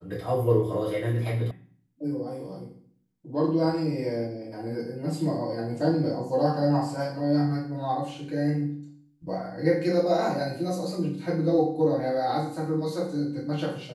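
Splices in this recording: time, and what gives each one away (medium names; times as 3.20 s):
1.51 s: sound stops dead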